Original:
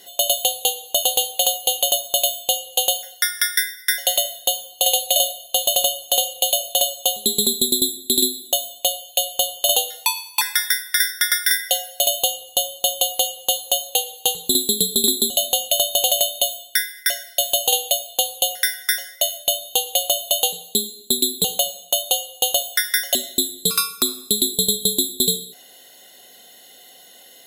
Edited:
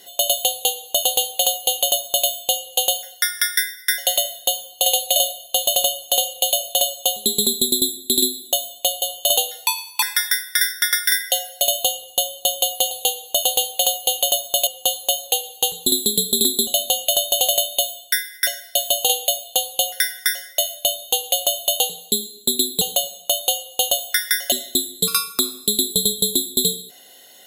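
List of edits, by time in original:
0.51–2.27 copy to 13.3
9.02–9.41 cut

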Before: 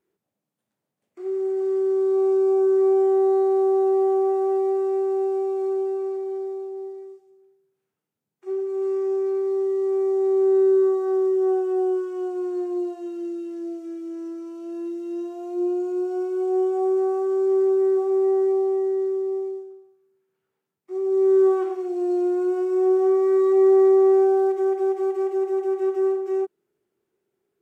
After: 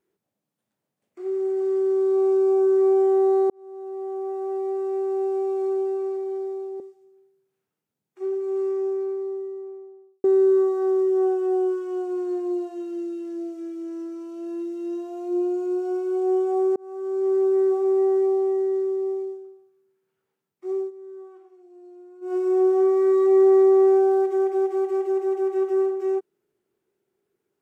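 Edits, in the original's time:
3.5–5.53 fade in
6.8–7.06 cut
8.59–10.5 studio fade out
17.02–17.94 fade in equal-power
21.02–22.62 dip -23.5 dB, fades 0.15 s

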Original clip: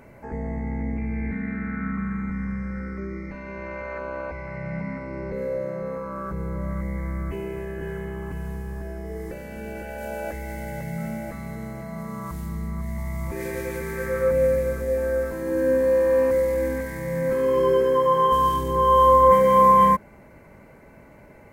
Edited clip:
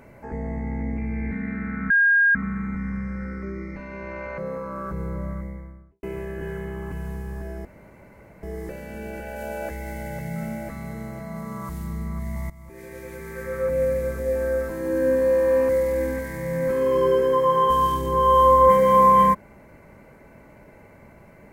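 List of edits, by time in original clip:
1.9 add tone 1620 Hz -14 dBFS 0.45 s
3.93–5.78 cut
6.41–7.43 studio fade out
9.05 insert room tone 0.78 s
13.12–14.98 fade in, from -17.5 dB

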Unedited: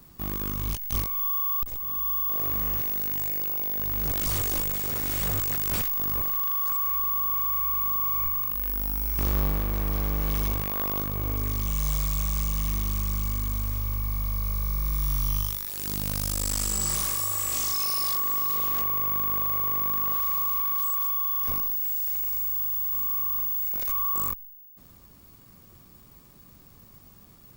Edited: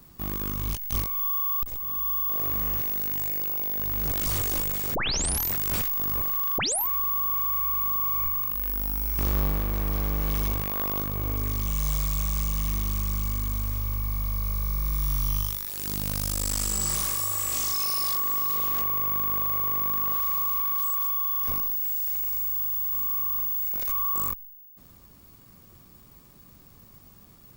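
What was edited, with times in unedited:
4.95 tape start 0.58 s
6.58 tape start 0.29 s

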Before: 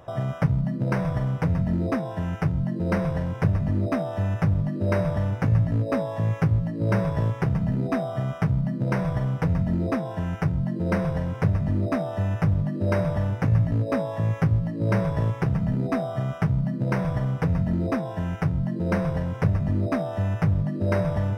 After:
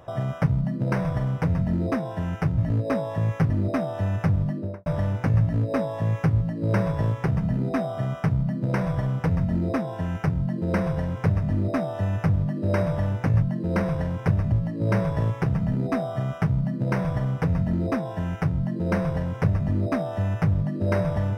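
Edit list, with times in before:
2.58–3.68 swap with 13.6–14.52
4.66–5.04 studio fade out

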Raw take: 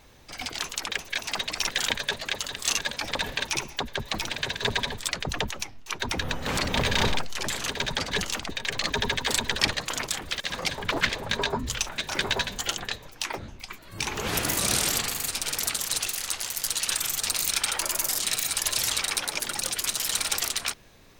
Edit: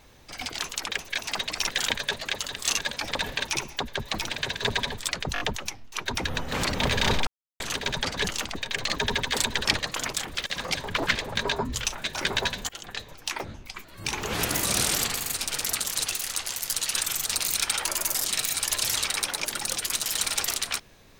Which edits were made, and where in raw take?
5.34 stutter 0.02 s, 4 plays
7.21–7.54 mute
12.63–13.05 fade in, from -20 dB

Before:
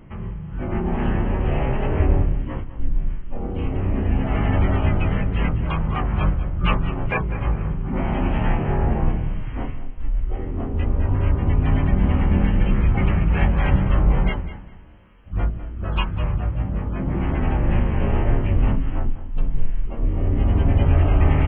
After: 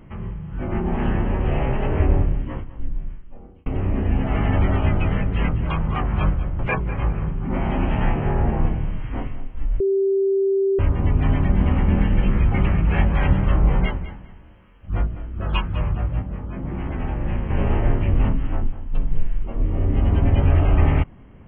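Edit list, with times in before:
2.36–3.66 fade out
6.59–7.02 cut
10.23–11.22 bleep 390 Hz -16 dBFS
16.65–17.93 gain -5 dB

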